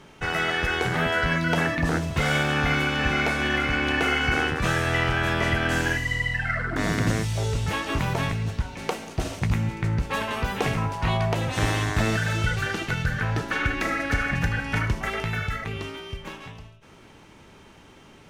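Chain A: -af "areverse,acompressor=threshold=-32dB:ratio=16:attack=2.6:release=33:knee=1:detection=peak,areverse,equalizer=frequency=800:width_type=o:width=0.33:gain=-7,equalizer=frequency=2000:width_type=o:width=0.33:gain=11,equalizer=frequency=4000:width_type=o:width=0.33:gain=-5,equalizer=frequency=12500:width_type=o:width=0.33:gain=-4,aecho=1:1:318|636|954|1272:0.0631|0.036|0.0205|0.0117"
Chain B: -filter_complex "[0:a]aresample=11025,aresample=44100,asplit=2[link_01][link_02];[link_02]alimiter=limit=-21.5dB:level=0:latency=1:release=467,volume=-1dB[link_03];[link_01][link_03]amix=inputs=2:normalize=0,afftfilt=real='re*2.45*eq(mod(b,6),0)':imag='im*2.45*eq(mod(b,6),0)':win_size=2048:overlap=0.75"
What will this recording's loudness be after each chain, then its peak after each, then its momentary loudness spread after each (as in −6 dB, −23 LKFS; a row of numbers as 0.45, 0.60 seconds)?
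−31.5, −24.5 LKFS; −18.5, −10.5 dBFS; 7, 9 LU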